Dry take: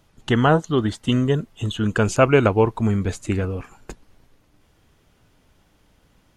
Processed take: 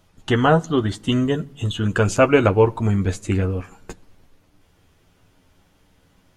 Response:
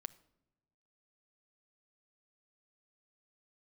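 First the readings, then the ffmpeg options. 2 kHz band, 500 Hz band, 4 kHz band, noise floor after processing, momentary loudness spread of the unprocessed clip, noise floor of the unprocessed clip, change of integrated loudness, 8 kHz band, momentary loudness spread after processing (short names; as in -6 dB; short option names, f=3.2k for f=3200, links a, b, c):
+1.0 dB, +1.0 dB, +1.0 dB, -60 dBFS, 9 LU, -61 dBFS, +0.5 dB, +1.0 dB, 9 LU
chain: -filter_complex "[0:a]asplit=2[a][b];[1:a]atrim=start_sample=2205,adelay=11[c];[b][c]afir=irnorm=-1:irlink=0,volume=-2dB[d];[a][d]amix=inputs=2:normalize=0"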